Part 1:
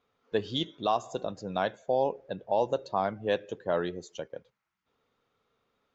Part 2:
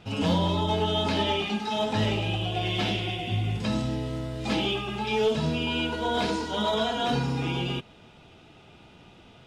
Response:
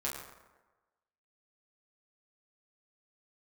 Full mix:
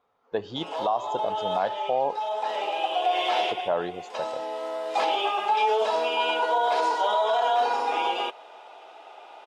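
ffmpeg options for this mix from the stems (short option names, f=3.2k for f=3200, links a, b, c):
-filter_complex "[0:a]volume=-4dB,asplit=3[a][b][c];[a]atrim=end=2.27,asetpts=PTS-STARTPTS,afade=t=out:st=2.266:d=0.004:c=hsin[d];[b]atrim=start=2.27:end=3.43,asetpts=PTS-STARTPTS,volume=0[e];[c]atrim=start=3.43,asetpts=PTS-STARTPTS,afade=t=in:d=0.004:c=hsin[f];[d][e][f]concat=n=3:v=0:a=1,asplit=2[g][h];[1:a]highpass=f=440:w=0.5412,highpass=f=440:w=1.3066,alimiter=limit=-22dB:level=0:latency=1:release=16,adelay=500,volume=0dB[i];[h]apad=whole_len=439325[j];[i][j]sidechaincompress=threshold=-38dB:ratio=5:attack=6.1:release=1030[k];[g][k]amix=inputs=2:normalize=0,equalizer=f=820:w=0.93:g=14.5,alimiter=limit=-15dB:level=0:latency=1:release=87"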